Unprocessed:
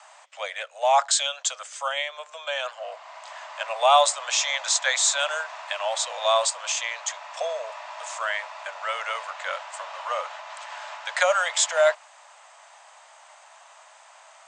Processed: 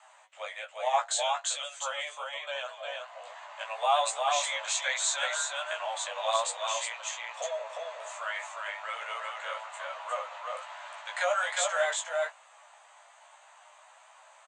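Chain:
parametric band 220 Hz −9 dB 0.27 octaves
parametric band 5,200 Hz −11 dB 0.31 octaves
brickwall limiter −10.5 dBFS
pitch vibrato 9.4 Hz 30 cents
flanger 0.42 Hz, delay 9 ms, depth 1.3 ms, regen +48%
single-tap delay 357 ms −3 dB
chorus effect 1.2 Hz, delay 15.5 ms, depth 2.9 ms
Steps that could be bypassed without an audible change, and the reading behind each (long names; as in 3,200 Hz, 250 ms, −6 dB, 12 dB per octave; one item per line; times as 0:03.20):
parametric band 220 Hz: nothing at its input below 430 Hz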